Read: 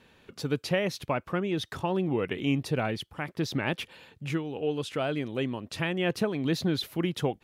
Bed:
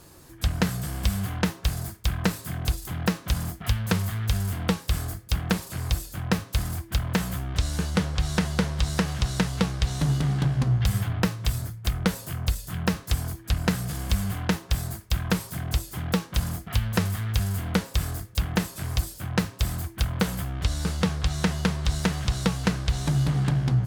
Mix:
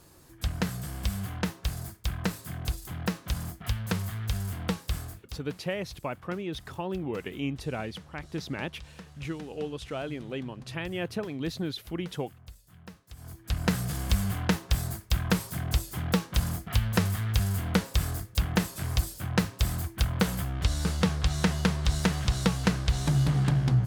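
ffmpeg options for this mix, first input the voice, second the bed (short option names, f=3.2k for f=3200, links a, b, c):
-filter_complex "[0:a]adelay=4950,volume=-5dB[a];[1:a]volume=16dB,afade=t=out:st=4.89:d=0.55:silence=0.141254,afade=t=in:st=13.15:d=0.62:silence=0.0841395[b];[a][b]amix=inputs=2:normalize=0"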